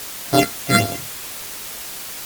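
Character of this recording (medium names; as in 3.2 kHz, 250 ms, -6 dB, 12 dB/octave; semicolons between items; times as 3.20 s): a buzz of ramps at a fixed pitch in blocks of 64 samples; phasing stages 8, 3.7 Hz, lowest notch 800–2500 Hz; a quantiser's noise floor 6-bit, dither triangular; MP3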